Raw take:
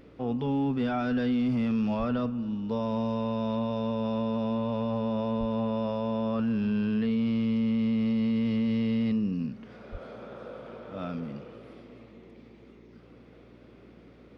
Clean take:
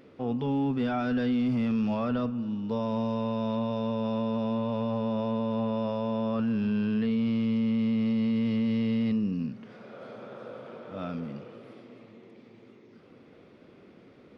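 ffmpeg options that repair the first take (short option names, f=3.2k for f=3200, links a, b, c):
-filter_complex "[0:a]bandreject=f=58.4:t=h:w=4,bandreject=f=116.8:t=h:w=4,bandreject=f=175.2:t=h:w=4,bandreject=f=233.6:t=h:w=4,bandreject=f=292:t=h:w=4,asplit=3[a][b][c];[a]afade=t=out:st=1.98:d=0.02[d];[b]highpass=f=140:w=0.5412,highpass=f=140:w=1.3066,afade=t=in:st=1.98:d=0.02,afade=t=out:st=2.1:d=0.02[e];[c]afade=t=in:st=2.1:d=0.02[f];[d][e][f]amix=inputs=3:normalize=0,asplit=3[g][h][i];[g]afade=t=out:st=5.39:d=0.02[j];[h]highpass=f=140:w=0.5412,highpass=f=140:w=1.3066,afade=t=in:st=5.39:d=0.02,afade=t=out:st=5.51:d=0.02[k];[i]afade=t=in:st=5.51:d=0.02[l];[j][k][l]amix=inputs=3:normalize=0,asplit=3[m][n][o];[m]afade=t=out:st=9.91:d=0.02[p];[n]highpass=f=140:w=0.5412,highpass=f=140:w=1.3066,afade=t=in:st=9.91:d=0.02,afade=t=out:st=10.03:d=0.02[q];[o]afade=t=in:st=10.03:d=0.02[r];[p][q][r]amix=inputs=3:normalize=0"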